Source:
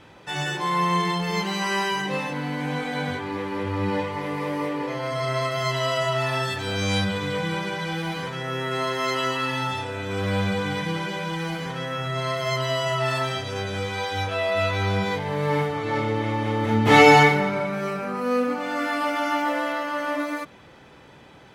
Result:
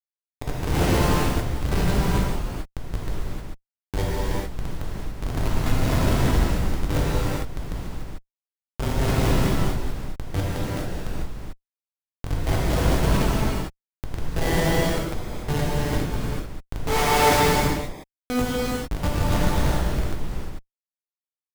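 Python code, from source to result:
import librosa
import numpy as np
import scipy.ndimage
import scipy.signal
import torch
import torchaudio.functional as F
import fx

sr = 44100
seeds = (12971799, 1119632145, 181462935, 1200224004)

p1 = scipy.signal.sosfilt(scipy.signal.butter(8, 390.0, 'highpass', fs=sr, output='sos'), x)
p2 = fx.rider(p1, sr, range_db=5, speed_s=2.0)
p3 = p1 + F.gain(torch.from_numpy(p2), 1.5).numpy()
p4 = fx.schmitt(p3, sr, flips_db=-11.0)
p5 = fx.rev_gated(p4, sr, seeds[0], gate_ms=470, shape='flat', drr_db=-7.5)
y = F.gain(torch.from_numpy(p5), -6.5).numpy()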